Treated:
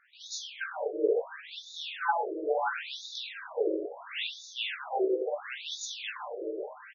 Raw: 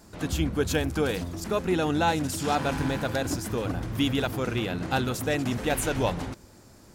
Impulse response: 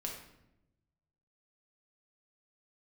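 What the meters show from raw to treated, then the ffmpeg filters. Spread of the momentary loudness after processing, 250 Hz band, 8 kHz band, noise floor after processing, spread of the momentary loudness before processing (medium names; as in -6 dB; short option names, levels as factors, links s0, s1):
9 LU, -13.0 dB, -9.0 dB, -50 dBFS, 5 LU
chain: -filter_complex "[0:a]asubboost=boost=9:cutoff=220,flanger=delay=15.5:depth=3.5:speed=0.39,aecho=1:1:562|1124|1686|2248|2810|3372:0.251|0.138|0.076|0.0418|0.023|0.0126[s0];[1:a]atrim=start_sample=2205[s1];[s0][s1]afir=irnorm=-1:irlink=0,afftfilt=real='re*between(b*sr/1024,440*pow(5000/440,0.5+0.5*sin(2*PI*0.73*pts/sr))/1.41,440*pow(5000/440,0.5+0.5*sin(2*PI*0.73*pts/sr))*1.41)':imag='im*between(b*sr/1024,440*pow(5000/440,0.5+0.5*sin(2*PI*0.73*pts/sr))/1.41,440*pow(5000/440,0.5+0.5*sin(2*PI*0.73*pts/sr))*1.41)':win_size=1024:overlap=0.75,volume=2.11"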